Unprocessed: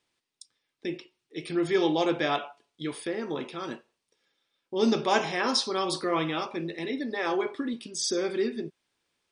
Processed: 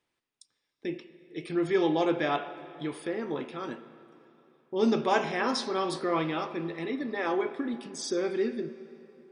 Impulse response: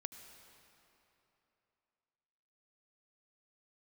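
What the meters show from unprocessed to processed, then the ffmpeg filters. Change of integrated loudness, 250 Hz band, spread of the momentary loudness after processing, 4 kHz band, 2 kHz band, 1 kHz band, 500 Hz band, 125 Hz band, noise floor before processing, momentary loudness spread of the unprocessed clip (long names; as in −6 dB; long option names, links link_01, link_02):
−1.5 dB, −0.5 dB, 14 LU, −6.5 dB, −2.0 dB, −1.0 dB, −0.5 dB, −0.5 dB, −83 dBFS, 13 LU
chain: -filter_complex "[0:a]asplit=2[link_01][link_02];[1:a]atrim=start_sample=2205,lowpass=3000[link_03];[link_02][link_03]afir=irnorm=-1:irlink=0,volume=2.5dB[link_04];[link_01][link_04]amix=inputs=2:normalize=0,volume=-6dB"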